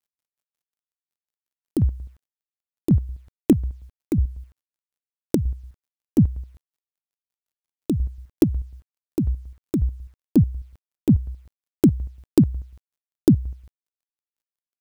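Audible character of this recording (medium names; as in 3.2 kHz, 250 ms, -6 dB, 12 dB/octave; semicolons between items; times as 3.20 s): chopped level 5.5 Hz, depth 60%, duty 40%; a quantiser's noise floor 12-bit, dither none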